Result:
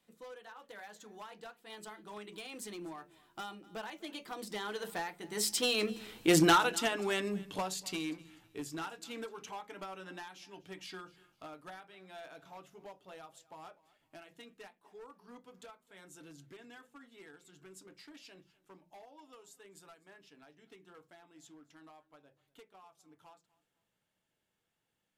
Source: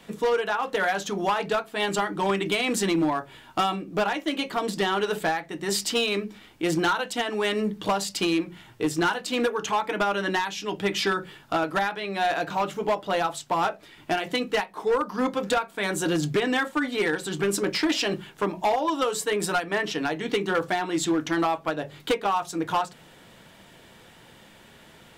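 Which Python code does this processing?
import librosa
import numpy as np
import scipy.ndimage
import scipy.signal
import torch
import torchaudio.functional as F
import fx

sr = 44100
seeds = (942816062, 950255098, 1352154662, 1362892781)

y = fx.doppler_pass(x, sr, speed_mps=19, closest_m=6.0, pass_at_s=6.34)
y = fx.high_shelf(y, sr, hz=6000.0, db=8.5)
y = fx.echo_feedback(y, sr, ms=250, feedback_pct=29, wet_db=-21.5)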